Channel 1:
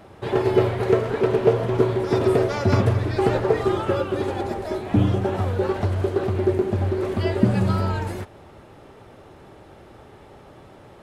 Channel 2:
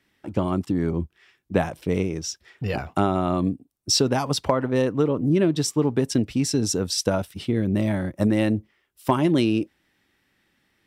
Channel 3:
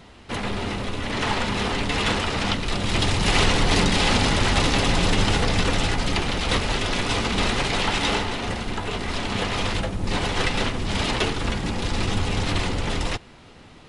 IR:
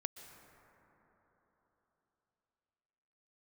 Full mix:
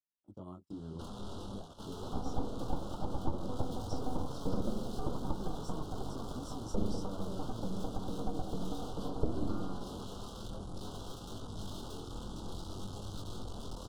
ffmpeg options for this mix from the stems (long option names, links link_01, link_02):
-filter_complex "[0:a]aeval=exprs='abs(val(0))':channel_layout=same,adelay=1800,volume=-11dB[link_01];[1:a]acompressor=threshold=-26dB:ratio=3,volume=-11dB[link_02];[2:a]aeval=exprs='(tanh(39.8*val(0)+0.6)-tanh(0.6))/39.8':channel_layout=same,adelay=700,volume=-5.5dB,asplit=2[link_03][link_04];[link_04]volume=-20.5dB[link_05];[link_02][link_03]amix=inputs=2:normalize=0,flanger=delay=18.5:depth=7:speed=0.53,alimiter=level_in=9dB:limit=-24dB:level=0:latency=1:release=365,volume=-9dB,volume=0dB[link_06];[3:a]atrim=start_sample=2205[link_07];[link_05][link_07]afir=irnorm=-1:irlink=0[link_08];[link_01][link_06][link_08]amix=inputs=3:normalize=0,agate=range=-26dB:threshold=-45dB:ratio=16:detection=peak,acrossover=split=490[link_09][link_10];[link_10]acompressor=threshold=-47dB:ratio=3[link_11];[link_09][link_11]amix=inputs=2:normalize=0,asuperstop=centerf=2100:order=8:qfactor=1.2"